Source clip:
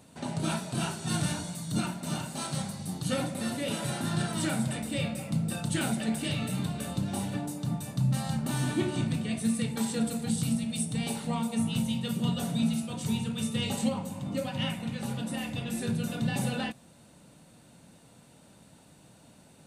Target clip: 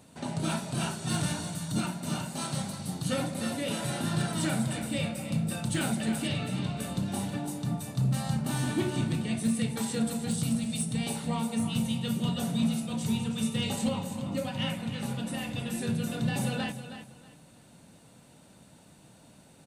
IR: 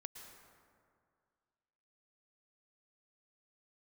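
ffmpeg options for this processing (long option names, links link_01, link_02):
-filter_complex "[0:a]asettb=1/sr,asplit=3[link_01][link_02][link_03];[link_01]atrim=end=6.274[link_04];[link_02]atrim=start=6.27:end=6.77,asetpts=PTS-STARTPTS,afade=type=in:duration=0.004:curve=qsin,afade=type=out:start_time=0.496:duration=0.004:curve=qsin,lowpass=6100[link_05];[link_03]atrim=start=6.766[link_06];[link_04][link_05]acrossfade=duration=0.004:curve1=hsin:curve2=qsin[link_07];[link_07][link_06]acrossfade=duration=0.004:curve1=qsin:curve2=hsin,asoftclip=type=hard:threshold=-21dB,aecho=1:1:319|638|957:0.282|0.0648|0.0149"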